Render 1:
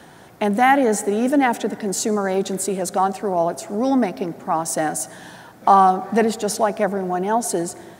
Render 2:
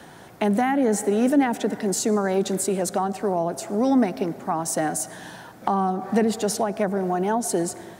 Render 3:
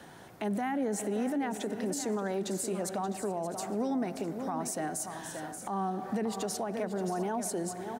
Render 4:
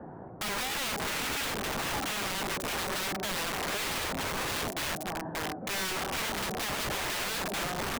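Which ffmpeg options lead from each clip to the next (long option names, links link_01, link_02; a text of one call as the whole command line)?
ffmpeg -i in.wav -filter_complex "[0:a]acrossover=split=360[link_01][link_02];[link_02]acompressor=threshold=-22dB:ratio=10[link_03];[link_01][link_03]amix=inputs=2:normalize=0" out.wav
ffmpeg -i in.wav -filter_complex "[0:a]asplit=2[link_01][link_02];[link_02]aecho=0:1:579|656:0.266|0.141[link_03];[link_01][link_03]amix=inputs=2:normalize=0,alimiter=limit=-18.5dB:level=0:latency=1:release=142,volume=-6dB" out.wav
ffmpeg -i in.wav -filter_complex "[0:a]highshelf=frequency=2300:gain=-10,acrossover=split=1300[link_01][link_02];[link_01]aeval=exprs='(mod(66.8*val(0)+1,2)-1)/66.8':channel_layout=same[link_03];[link_02]acrusher=bits=5:mix=0:aa=0.000001[link_04];[link_03][link_04]amix=inputs=2:normalize=0,volume=8.5dB" out.wav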